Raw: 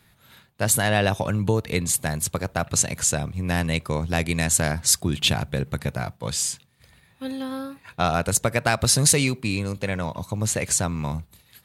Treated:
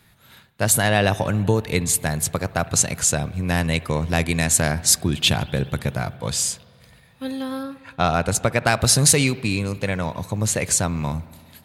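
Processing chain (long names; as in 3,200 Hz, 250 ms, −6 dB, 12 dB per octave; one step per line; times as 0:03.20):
0:07.63–0:08.67: high-shelf EQ 9,800 Hz −11.5 dB
spring reverb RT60 2.3 s, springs 59 ms, chirp 40 ms, DRR 17.5 dB
level +2.5 dB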